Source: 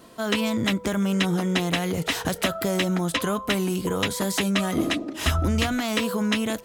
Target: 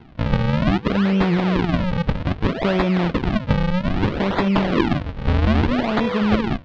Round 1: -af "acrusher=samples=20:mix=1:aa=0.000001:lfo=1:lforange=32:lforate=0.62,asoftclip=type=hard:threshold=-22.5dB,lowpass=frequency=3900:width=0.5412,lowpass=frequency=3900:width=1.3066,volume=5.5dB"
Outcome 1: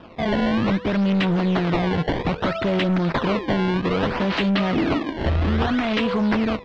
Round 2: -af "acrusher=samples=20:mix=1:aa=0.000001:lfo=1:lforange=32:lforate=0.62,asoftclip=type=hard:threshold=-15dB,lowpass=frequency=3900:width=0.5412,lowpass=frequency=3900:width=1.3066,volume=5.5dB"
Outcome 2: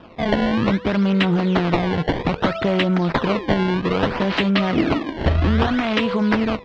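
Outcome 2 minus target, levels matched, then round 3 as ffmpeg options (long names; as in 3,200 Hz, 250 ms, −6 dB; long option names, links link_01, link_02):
sample-and-hold swept by an LFO: distortion −9 dB
-af "acrusher=samples=72:mix=1:aa=0.000001:lfo=1:lforange=115:lforate=0.62,asoftclip=type=hard:threshold=-15dB,lowpass=frequency=3900:width=0.5412,lowpass=frequency=3900:width=1.3066,volume=5.5dB"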